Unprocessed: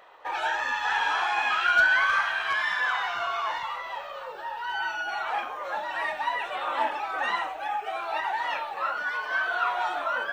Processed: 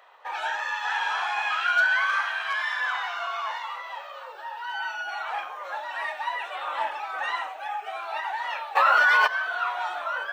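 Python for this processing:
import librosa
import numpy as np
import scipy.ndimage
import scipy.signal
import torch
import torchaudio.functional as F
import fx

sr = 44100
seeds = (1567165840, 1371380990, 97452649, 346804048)

y = scipy.signal.sosfilt(scipy.signal.butter(2, 590.0, 'highpass', fs=sr, output='sos'), x)
y = fx.env_flatten(y, sr, amount_pct=100, at=(8.75, 9.26), fade=0.02)
y = F.gain(torch.from_numpy(y), -1.0).numpy()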